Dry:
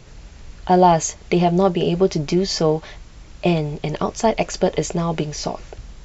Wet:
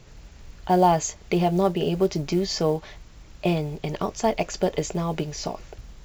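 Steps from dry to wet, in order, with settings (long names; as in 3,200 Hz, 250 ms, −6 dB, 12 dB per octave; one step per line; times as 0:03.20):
floating-point word with a short mantissa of 4 bits
level −5 dB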